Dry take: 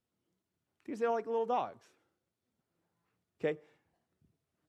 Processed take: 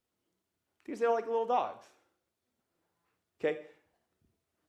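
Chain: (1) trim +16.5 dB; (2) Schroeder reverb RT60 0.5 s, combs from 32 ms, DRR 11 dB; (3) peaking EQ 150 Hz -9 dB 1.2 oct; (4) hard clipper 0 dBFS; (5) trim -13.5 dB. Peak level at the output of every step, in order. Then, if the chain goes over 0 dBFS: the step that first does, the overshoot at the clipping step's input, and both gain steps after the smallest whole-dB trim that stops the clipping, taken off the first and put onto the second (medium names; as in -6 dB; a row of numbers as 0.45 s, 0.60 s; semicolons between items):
-5.0 dBFS, -4.0 dBFS, -4.5 dBFS, -4.5 dBFS, -18.0 dBFS; nothing clips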